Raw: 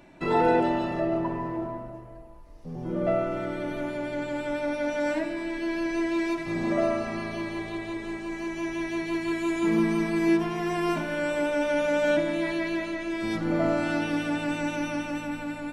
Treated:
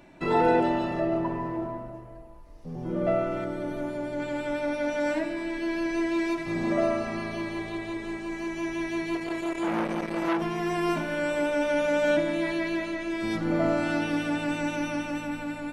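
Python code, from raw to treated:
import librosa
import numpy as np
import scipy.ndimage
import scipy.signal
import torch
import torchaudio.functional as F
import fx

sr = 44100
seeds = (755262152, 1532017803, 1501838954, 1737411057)

y = fx.peak_eq(x, sr, hz=2500.0, db=-7.0, octaves=1.6, at=(3.44, 4.2))
y = fx.transformer_sat(y, sr, knee_hz=1200.0, at=(9.15, 10.42))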